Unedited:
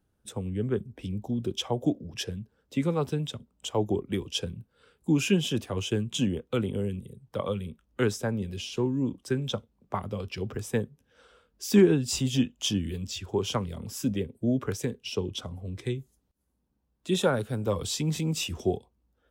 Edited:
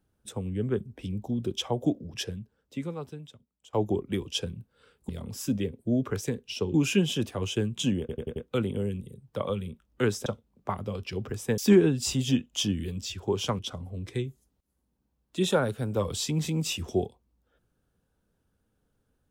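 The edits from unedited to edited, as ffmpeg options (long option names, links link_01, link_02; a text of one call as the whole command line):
ffmpeg -i in.wav -filter_complex "[0:a]asplit=11[link_01][link_02][link_03][link_04][link_05][link_06][link_07][link_08][link_09][link_10][link_11];[link_01]atrim=end=3.73,asetpts=PTS-STARTPTS,afade=type=out:start_time=2.24:duration=1.49:curve=qua:silence=0.11885[link_12];[link_02]atrim=start=3.73:end=5.092,asetpts=PTS-STARTPTS,afade=type=in:duration=0.004:curve=hsin:silence=0.11885[link_13];[link_03]atrim=start=13.648:end=15.302[link_14];[link_04]atrim=start=5.088:end=6.442[link_15];[link_05]atrim=start=6.348:end=6.442[link_16];[link_06]atrim=start=6.348:end=6.442[link_17];[link_07]atrim=start=6.348:end=6.442[link_18];[link_08]atrim=start=6.348:end=8.252[link_19];[link_09]atrim=start=9.508:end=10.832[link_20];[link_10]atrim=start=11.638:end=13.652[link_21];[link_11]atrim=start=15.298[link_22];[link_12][link_13]concat=n=2:v=0:a=1[link_23];[link_23][link_14]acrossfade=duration=0.004:curve1=hsin:curve2=hsin[link_24];[link_24][link_15]acrossfade=duration=0.004:curve1=hsin:curve2=hsin[link_25];[link_25][link_16]acrossfade=duration=0.004:curve1=hsin:curve2=hsin[link_26];[link_26][link_17]acrossfade=duration=0.004:curve1=hsin:curve2=hsin[link_27];[link_27][link_18]acrossfade=duration=0.004:curve1=hsin:curve2=hsin[link_28];[link_28][link_19]acrossfade=duration=0.004:curve1=hsin:curve2=hsin[link_29];[link_29][link_20]acrossfade=duration=0.004:curve1=hsin:curve2=hsin[link_30];[link_30][link_21]acrossfade=duration=0.004:curve1=hsin:curve2=hsin[link_31];[link_31][link_22]acrossfade=duration=0.004:curve1=hsin:curve2=hsin" out.wav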